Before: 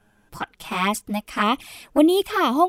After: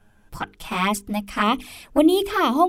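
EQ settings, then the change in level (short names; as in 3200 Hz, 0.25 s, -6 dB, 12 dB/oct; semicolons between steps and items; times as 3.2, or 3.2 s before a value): low shelf 110 Hz +10.5 dB; notches 50/100/150/200/250/300/350/400/450 Hz; 0.0 dB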